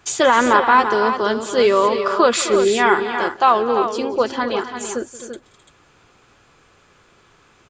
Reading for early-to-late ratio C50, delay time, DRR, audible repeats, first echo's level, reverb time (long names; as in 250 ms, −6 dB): no reverb audible, 178 ms, no reverb audible, 3, −18.5 dB, no reverb audible